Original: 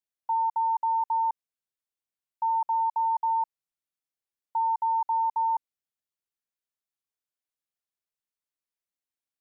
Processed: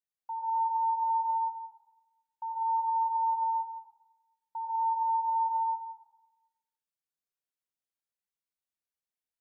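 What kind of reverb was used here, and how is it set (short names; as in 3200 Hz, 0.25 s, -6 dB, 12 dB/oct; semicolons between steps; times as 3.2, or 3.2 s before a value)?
plate-style reverb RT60 1 s, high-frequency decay 0.85×, pre-delay 85 ms, DRR -4.5 dB; gain -10 dB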